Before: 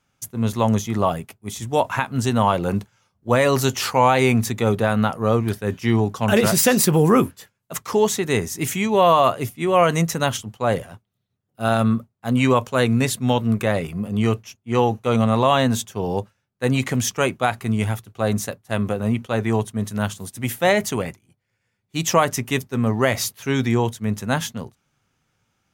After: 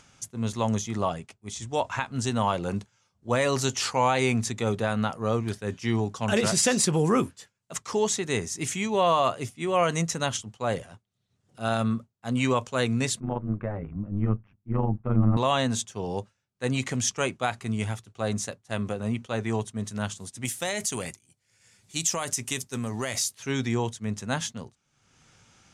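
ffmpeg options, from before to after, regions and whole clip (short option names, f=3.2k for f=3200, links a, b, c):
-filter_complex "[0:a]asettb=1/sr,asplit=3[a][b][c];[a]atrim=end=1.084[d];[b]atrim=start=1.08:end=2.11,asetpts=PTS-STARTPTS,afade=t=in:d=0.004:c=qsin,afade=t=out:st=1.026:d=0.004:c=qsin,lowpass=8.7k,asubboost=boost=10.5:cutoff=77[e];[c]atrim=start=2.106[f];[d][e]acrossfade=d=0.004:c1=hsin:c2=qsin[g];[g][f]acrossfade=d=0.004:c1=qsin:c2=hsin,asettb=1/sr,asplit=3[h][i][j];[h]atrim=end=13.204[k];[i]atrim=start=13.2:end=15.37,asetpts=PTS-STARTPTS,afade=t=in:d=0.004:c=qsin,afade=t=out:st=2.166:d=0.004:c=qsin,lowpass=f=1.6k:w=0.5412,lowpass=f=1.6k:w=1.3066,asubboost=boost=8:cutoff=200,tremolo=f=100:d=0.788[l];[j]atrim=start=15.366[m];[k][l]acrossfade=d=0.004:c1=hsin:c2=qsin[n];[n][m]acrossfade=d=0.004:c1=qsin:c2=hsin,asettb=1/sr,asplit=3[o][p][q];[o]atrim=end=20.454[r];[p]atrim=start=20.45:end=23.35,asetpts=PTS-STARTPTS,afade=t=in:d=0.004:c=qsin,afade=t=out:st=2.896:d=0.004:c=qsin,aemphasis=mode=production:type=75fm,acompressor=threshold=-18dB:ratio=6:attack=3.2:release=140:knee=1:detection=peak[s];[q]atrim=start=23.346[t];[r][s]acrossfade=d=0.004:c1=hsin:c2=qsin[u];[u][t]acrossfade=d=0.004:c1=qsin:c2=hsin,lowpass=f=8.3k:w=0.5412,lowpass=f=8.3k:w=1.3066,highshelf=f=4.9k:g=10,acompressor=mode=upward:threshold=-35dB:ratio=2.5,volume=-7.5dB"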